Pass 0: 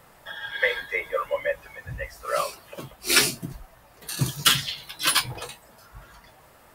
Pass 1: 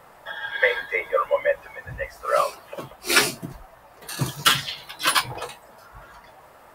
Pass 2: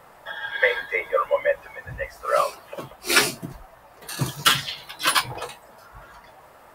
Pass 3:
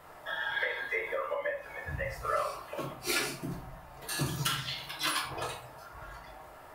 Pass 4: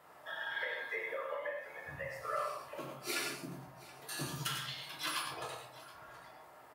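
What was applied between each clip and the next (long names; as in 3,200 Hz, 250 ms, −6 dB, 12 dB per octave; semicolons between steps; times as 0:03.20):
parametric band 840 Hz +9 dB 2.7 octaves; level −2.5 dB
no processing that can be heard
downward compressor 10 to 1, threshold −26 dBFS, peak gain reduction 15 dB; convolution reverb RT60 0.55 s, pre-delay 3 ms, DRR 0 dB; level −4.5 dB
high-pass filter 150 Hz 12 dB per octave; multi-tap delay 95/110/726 ms −8.5/−8.5/−19 dB; level −7 dB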